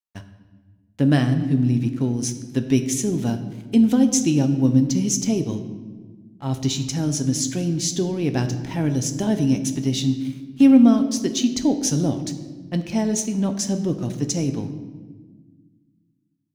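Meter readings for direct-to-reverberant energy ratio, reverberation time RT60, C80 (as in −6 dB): 6.0 dB, 1.4 s, 12.0 dB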